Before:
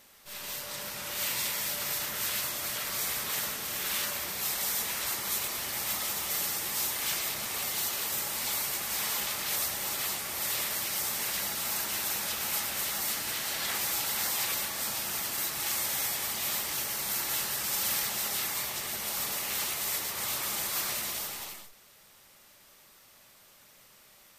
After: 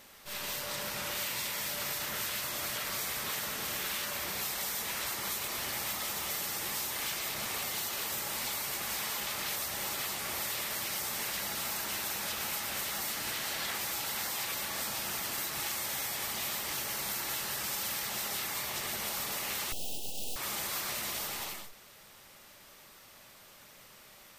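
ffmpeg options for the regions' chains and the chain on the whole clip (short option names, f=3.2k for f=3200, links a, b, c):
-filter_complex "[0:a]asettb=1/sr,asplit=3[a][b][c];[a]atrim=end=19.724[d];[b]atrim=start=19.72:end=20.36,asetpts=PTS-STARTPTS,afade=t=in:d=0.004:c=qsin,afade=t=out:st=0.636:d=0.004:c=qsin,equalizer=f=5.1k:w=0.98:g=7.5,aeval=exprs='abs(val(0))':c=same,asuperstop=centerf=1500:order=20:qfactor=0.85[e];[c]atrim=start=20.356[f];[d][e]acrossfade=d=0.004:c1=hsin:c2=qsin[g];[g][f]acrossfade=d=0.004:c1=qsin:c2=hsin,equalizer=f=11k:w=0.38:g=-4,acompressor=threshold=-37dB:ratio=6,volume=4.5dB"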